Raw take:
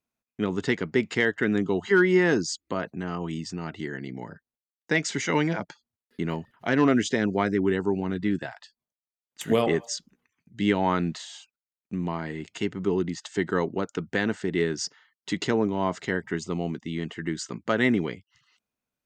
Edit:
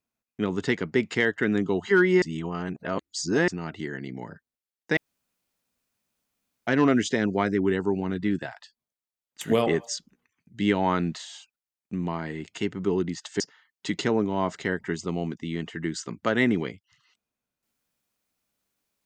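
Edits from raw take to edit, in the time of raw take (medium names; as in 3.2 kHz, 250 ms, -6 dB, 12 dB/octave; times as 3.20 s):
2.22–3.48 s: reverse
4.97–6.67 s: room tone
13.40–14.83 s: delete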